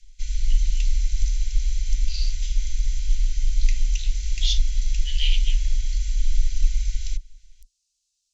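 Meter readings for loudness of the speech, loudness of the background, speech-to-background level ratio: -32.0 LUFS, -27.5 LUFS, -4.5 dB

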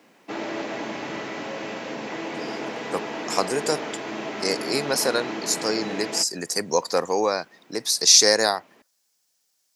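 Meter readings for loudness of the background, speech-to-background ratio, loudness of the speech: -32.0 LUFS, 10.0 dB, -22.0 LUFS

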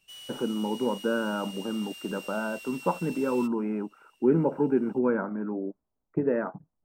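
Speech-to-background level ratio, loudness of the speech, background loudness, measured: 13.5 dB, -29.0 LUFS, -42.5 LUFS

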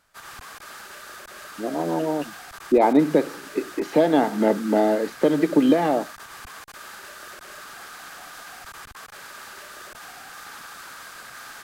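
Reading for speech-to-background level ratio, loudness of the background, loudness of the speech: 18.0 dB, -39.5 LUFS, -21.5 LUFS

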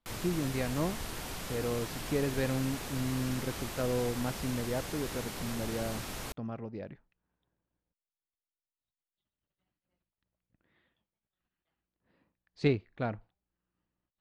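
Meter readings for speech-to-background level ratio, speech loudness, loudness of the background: 4.0 dB, -35.5 LUFS, -39.5 LUFS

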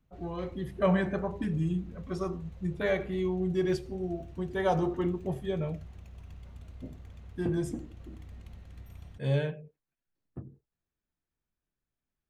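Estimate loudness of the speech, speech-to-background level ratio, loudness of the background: -32.0 LUFS, 17.0 dB, -49.0 LUFS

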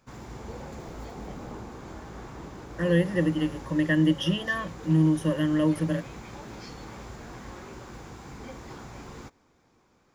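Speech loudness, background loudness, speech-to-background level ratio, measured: -25.5 LUFS, -42.0 LUFS, 16.5 dB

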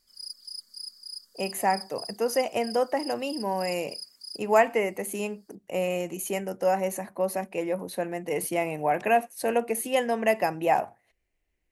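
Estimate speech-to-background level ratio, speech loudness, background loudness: 11.5 dB, -28.0 LUFS, -39.5 LUFS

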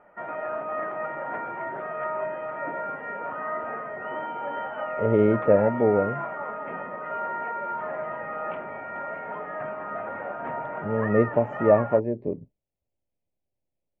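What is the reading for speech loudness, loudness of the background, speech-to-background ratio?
-23.0 LUFS, -32.5 LUFS, 9.5 dB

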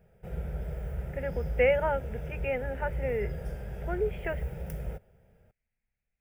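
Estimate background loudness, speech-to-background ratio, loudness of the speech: -38.0 LUFS, 6.5 dB, -31.5 LUFS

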